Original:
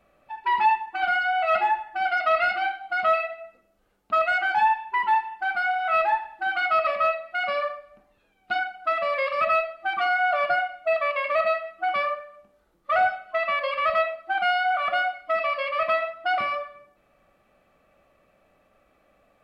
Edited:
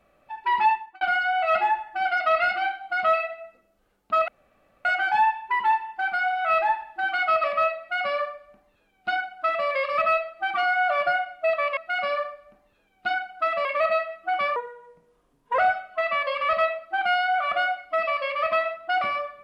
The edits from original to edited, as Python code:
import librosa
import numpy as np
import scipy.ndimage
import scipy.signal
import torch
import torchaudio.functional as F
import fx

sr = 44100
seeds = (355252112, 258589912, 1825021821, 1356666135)

y = fx.edit(x, sr, fx.fade_out_span(start_s=0.67, length_s=0.34),
    fx.insert_room_tone(at_s=4.28, length_s=0.57),
    fx.duplicate(start_s=7.22, length_s=1.88, to_s=11.2),
    fx.speed_span(start_s=12.11, length_s=0.84, speed=0.82), tone=tone)